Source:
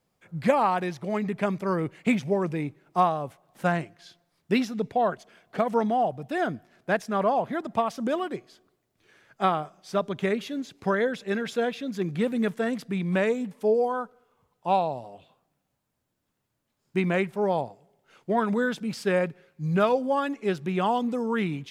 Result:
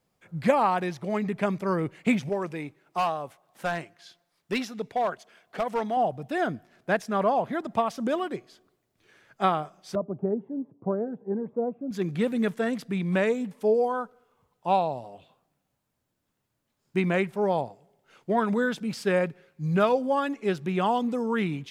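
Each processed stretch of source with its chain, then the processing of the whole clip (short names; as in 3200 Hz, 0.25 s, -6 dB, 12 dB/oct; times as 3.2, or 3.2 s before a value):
2.29–5.97 low shelf 330 Hz -10 dB + hard clip -20.5 dBFS
9.95–11.91 elliptic band-pass 110–900 Hz, stop band 60 dB + cascading phaser rising 1.2 Hz
whole clip: dry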